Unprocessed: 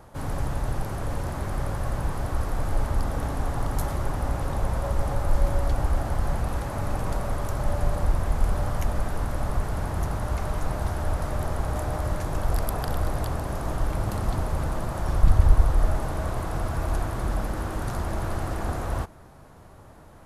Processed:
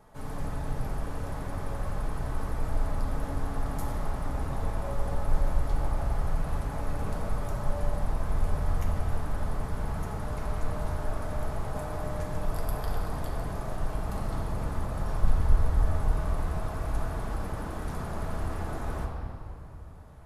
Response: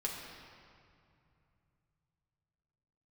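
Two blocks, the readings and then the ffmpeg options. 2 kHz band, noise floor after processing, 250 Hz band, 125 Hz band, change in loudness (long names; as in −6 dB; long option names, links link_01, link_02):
−5.0 dB, −39 dBFS, −4.0 dB, −5.0 dB, −5.0 dB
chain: -filter_complex "[1:a]atrim=start_sample=2205[link_01];[0:a][link_01]afir=irnorm=-1:irlink=0,volume=-7.5dB"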